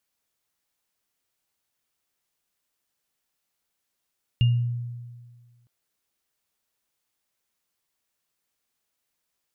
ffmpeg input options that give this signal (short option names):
-f lavfi -i "aevalsrc='0.188*pow(10,-3*t/1.67)*sin(2*PI*120*t)+0.0422*pow(10,-3*t/0.33)*sin(2*PI*2820*t)':d=1.26:s=44100"